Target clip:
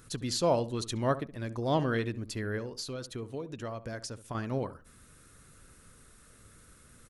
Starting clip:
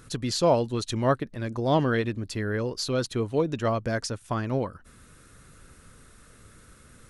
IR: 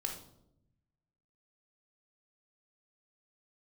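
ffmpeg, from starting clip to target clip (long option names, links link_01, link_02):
-filter_complex "[0:a]highshelf=frequency=7100:gain=6.5,asettb=1/sr,asplit=3[link_01][link_02][link_03];[link_01]atrim=end=2.584[link_04];[link_02]atrim=start=2.58:end=4.35,asetpts=PTS-STARTPTS,afade=type=in:duration=0.004:curve=qsin,afade=type=out:start_time=1.766:duration=0.004:curve=qsin,acompressor=threshold=-31dB:ratio=4[link_05];[link_03]atrim=start=4.346[link_06];[link_04][link_05]acrossfade=duration=0.004:curve1=hsin:curve2=qsin[link_07];[link_07][link_06]acrossfade=duration=0.004:curve1=qsin:curve2=hsin,asplit=2[link_08][link_09];[link_09]adelay=69,lowpass=frequency=1100:poles=1,volume=-13dB,asplit=2[link_10][link_11];[link_11]adelay=69,lowpass=frequency=1100:poles=1,volume=0.26,asplit=2[link_12][link_13];[link_13]adelay=69,lowpass=frequency=1100:poles=1,volume=0.26[link_14];[link_10][link_12][link_14]amix=inputs=3:normalize=0[link_15];[link_08][link_15]amix=inputs=2:normalize=0,volume=-5.5dB"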